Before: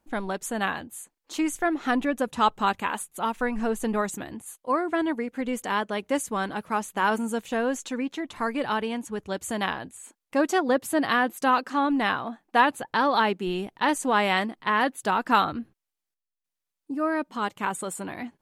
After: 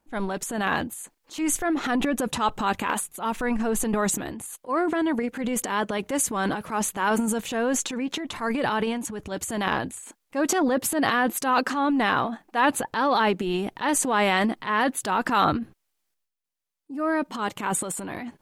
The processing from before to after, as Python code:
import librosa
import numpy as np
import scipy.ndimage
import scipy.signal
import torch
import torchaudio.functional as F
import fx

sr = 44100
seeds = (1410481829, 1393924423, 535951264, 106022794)

p1 = fx.level_steps(x, sr, step_db=14)
p2 = x + (p1 * librosa.db_to_amplitude(-0.5))
p3 = fx.transient(p2, sr, attack_db=-6, sustain_db=10)
y = p3 * librosa.db_to_amplitude(-2.5)